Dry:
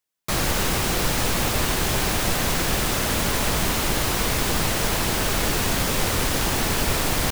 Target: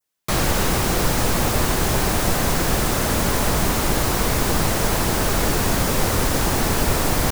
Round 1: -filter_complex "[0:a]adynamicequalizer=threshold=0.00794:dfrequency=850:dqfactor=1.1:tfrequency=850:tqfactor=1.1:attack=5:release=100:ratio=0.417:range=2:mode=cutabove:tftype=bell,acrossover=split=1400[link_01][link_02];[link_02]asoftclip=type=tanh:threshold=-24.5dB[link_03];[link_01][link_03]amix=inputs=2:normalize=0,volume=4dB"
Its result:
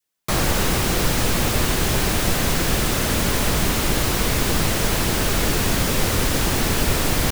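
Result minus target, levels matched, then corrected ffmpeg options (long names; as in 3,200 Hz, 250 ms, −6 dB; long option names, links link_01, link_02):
1,000 Hz band −2.5 dB
-filter_complex "[0:a]adynamicequalizer=threshold=0.00794:dfrequency=3000:dqfactor=1.1:tfrequency=3000:tqfactor=1.1:attack=5:release=100:ratio=0.417:range=2:mode=cutabove:tftype=bell,acrossover=split=1400[link_01][link_02];[link_02]asoftclip=type=tanh:threshold=-24.5dB[link_03];[link_01][link_03]amix=inputs=2:normalize=0,volume=4dB"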